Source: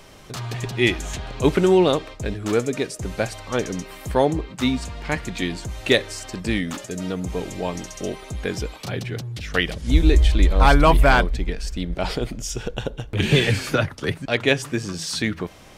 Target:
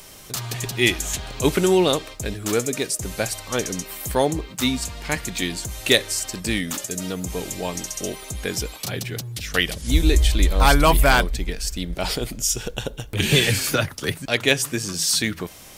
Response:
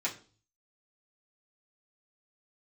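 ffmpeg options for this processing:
-af "aemphasis=mode=production:type=75fm,volume=0.891"

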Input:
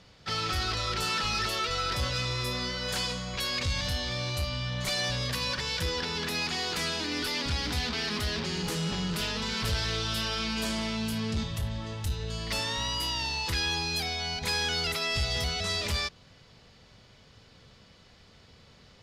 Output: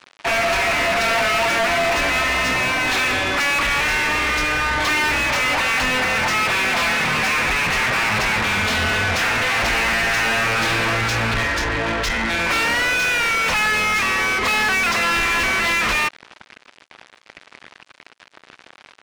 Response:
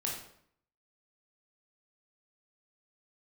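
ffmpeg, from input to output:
-filter_complex "[0:a]aeval=exprs='sgn(val(0))*max(abs(val(0))-0.00316,0)':c=same,asetrate=22696,aresample=44100,atempo=1.94306,asplit=2[s0][s1];[s1]highpass=f=720:p=1,volume=35.5,asoftclip=type=tanh:threshold=0.112[s2];[s0][s2]amix=inputs=2:normalize=0,lowpass=f=4400:p=1,volume=0.501,volume=2.11"

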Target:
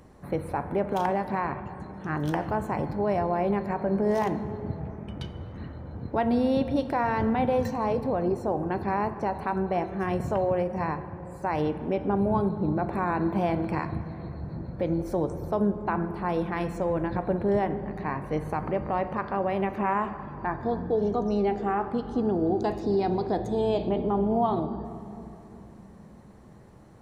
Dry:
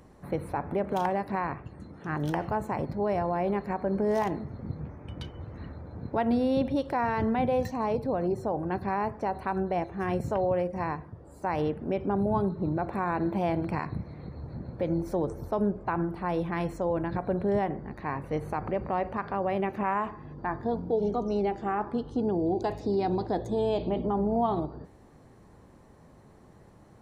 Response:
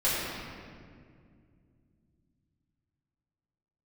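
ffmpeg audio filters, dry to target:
-filter_complex "[0:a]asplit=2[s0][s1];[1:a]atrim=start_sample=2205,asetrate=28665,aresample=44100,adelay=10[s2];[s1][s2]afir=irnorm=-1:irlink=0,volume=0.0501[s3];[s0][s3]amix=inputs=2:normalize=0,volume=1.19"

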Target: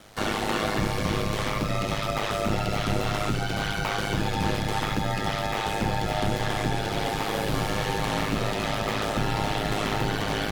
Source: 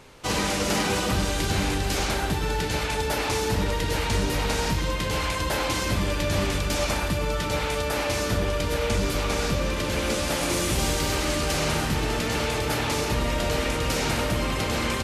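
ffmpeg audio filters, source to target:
-filter_complex "[0:a]asetrate=63063,aresample=44100,aeval=exprs='val(0)*sin(2*PI*52*n/s)':c=same,acrossover=split=4100[s0][s1];[s1]acompressor=threshold=0.00631:ratio=4:attack=1:release=60[s2];[s0][s2]amix=inputs=2:normalize=0,volume=1.26"

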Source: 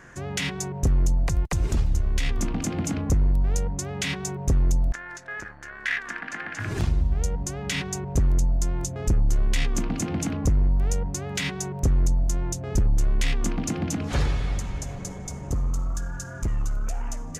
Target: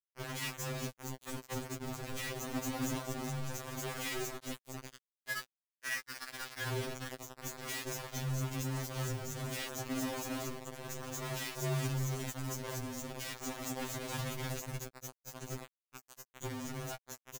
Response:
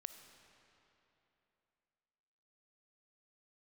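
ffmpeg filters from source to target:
-filter_complex "[0:a]asettb=1/sr,asplit=3[s0][s1][s2];[s0]atrim=end=12.424[s3];[s1]atrim=start=12.42:end=14.78,asetpts=PTS-STARTPTS,afade=t=in:d=0.004:c=qsin,afade=t=out:st=2.356:d=0.004:c=qsin,highshelf=f=3000:g=4[s4];[s2]atrim=start=14.776[s5];[s3][s4]acrossfade=d=0.004:c1=hsin:c2=qsin[s6];[s6][s5]acrossfade=d=0.004:c1=qsin:c2=hsin,afftdn=nr=19:nf=-35,equalizer=f=9000:t=o:w=1.7:g=2,acompressor=threshold=0.0631:ratio=4,highpass=47,asoftclip=type=tanh:threshold=0.119,aecho=1:1:417|834|1251|1668|2085:0.141|0.0763|0.0412|0.0222|0.012,flanger=delay=7.5:depth=4:regen=-8:speed=0.34:shape=triangular,alimiter=level_in=1.68:limit=0.0631:level=0:latency=1:release=11,volume=0.596,flanger=delay=1.6:depth=6.4:regen=-38:speed=0.88:shape=triangular,acrusher=bits=5:mix=0:aa=0.000001,afftfilt=real='re*2.45*eq(mod(b,6),0)':imag='im*2.45*eq(mod(b,6),0)':win_size=2048:overlap=0.75,volume=1.33"

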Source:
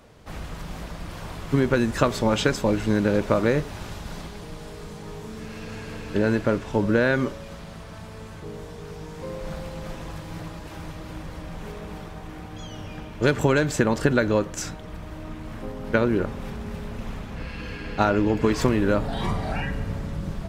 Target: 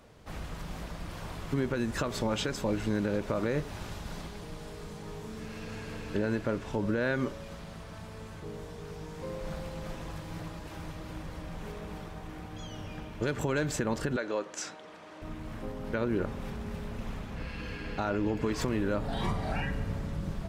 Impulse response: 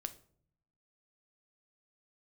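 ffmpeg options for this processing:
-filter_complex "[0:a]alimiter=limit=0.168:level=0:latency=1:release=155,asettb=1/sr,asplit=3[s0][s1][s2];[s0]atrim=end=14.164[s3];[s1]atrim=start=14.16:end=15.22,asetpts=PTS-STARTPTS,afade=t=in:d=0.004:c=qsin,afade=t=out:st=1.056:d=0.004:c=qsin,highpass=390,lowpass=7700[s4];[s2]atrim=start=15.216[s5];[s3][s4]acrossfade=d=0.004:c1=hsin:c2=qsin[s6];[s6][s5]acrossfade=d=0.004:c1=qsin:c2=hsin,volume=0.596"

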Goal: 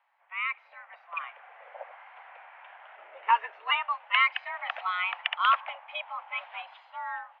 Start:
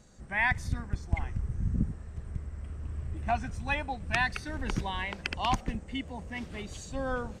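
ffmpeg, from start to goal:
-filter_complex "[0:a]highpass=f=430:t=q:w=0.5412,highpass=f=430:t=q:w=1.307,lowpass=f=2700:t=q:w=0.5176,lowpass=f=2700:t=q:w=0.7071,lowpass=f=2700:t=q:w=1.932,afreqshift=340,dynaudnorm=f=200:g=11:m=6.68,asplit=3[s0][s1][s2];[s0]afade=t=out:st=2.96:d=0.02[s3];[s1]afreqshift=-120,afade=t=in:st=2.96:d=0.02,afade=t=out:st=3.7:d=0.02[s4];[s2]afade=t=in:st=3.7:d=0.02[s5];[s3][s4][s5]amix=inputs=3:normalize=0,volume=0.531"

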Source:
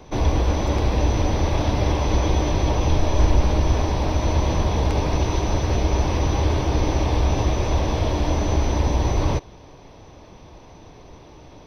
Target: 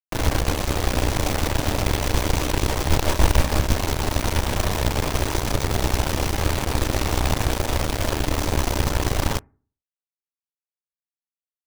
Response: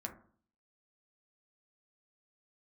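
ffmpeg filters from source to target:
-filter_complex "[0:a]acrusher=bits=3:mix=0:aa=0.000001,aeval=exprs='0.596*(cos(1*acos(clip(val(0)/0.596,-1,1)))-cos(1*PI/2))+0.119*(cos(3*acos(clip(val(0)/0.596,-1,1)))-cos(3*PI/2))+0.0473*(cos(6*acos(clip(val(0)/0.596,-1,1)))-cos(6*PI/2))':c=same,asplit=2[s0][s1];[1:a]atrim=start_sample=2205,asetrate=52920,aresample=44100[s2];[s1][s2]afir=irnorm=-1:irlink=0,volume=0.133[s3];[s0][s3]amix=inputs=2:normalize=0,volume=1.19"

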